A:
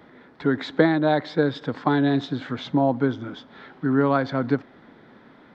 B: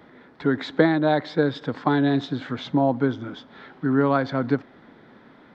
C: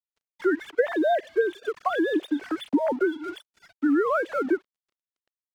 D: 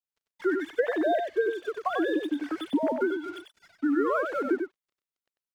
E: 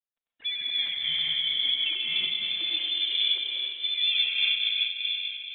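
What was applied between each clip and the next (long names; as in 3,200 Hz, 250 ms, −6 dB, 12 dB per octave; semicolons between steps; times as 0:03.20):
no processing that can be heard
three sine waves on the formant tracks; dead-zone distortion −47.5 dBFS; downward compressor 2.5 to 1, threshold −25 dBFS, peak gain reduction 9.5 dB; level +3 dB
single-tap delay 95 ms −5.5 dB; level −3.5 dB
dense smooth reverb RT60 5 s, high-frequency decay 0.35×, pre-delay 105 ms, DRR −5.5 dB; voice inversion scrambler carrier 3,800 Hz; amplitude modulation by smooth noise, depth 60%; level −3 dB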